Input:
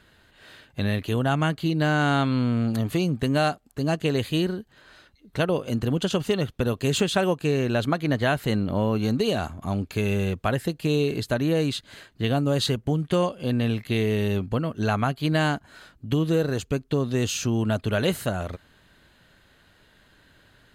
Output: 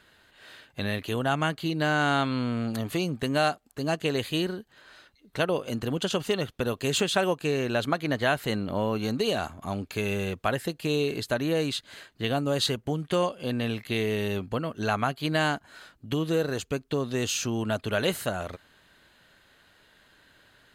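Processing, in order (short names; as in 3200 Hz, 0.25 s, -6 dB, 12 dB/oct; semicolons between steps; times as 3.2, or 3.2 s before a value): low shelf 270 Hz -9 dB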